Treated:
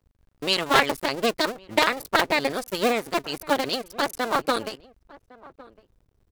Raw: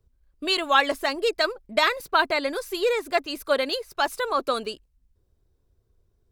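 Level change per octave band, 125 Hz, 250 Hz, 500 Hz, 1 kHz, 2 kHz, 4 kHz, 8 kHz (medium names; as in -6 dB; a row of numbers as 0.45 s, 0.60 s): no reading, +4.5 dB, -1.0 dB, 0.0 dB, 0.0 dB, +0.5 dB, +4.5 dB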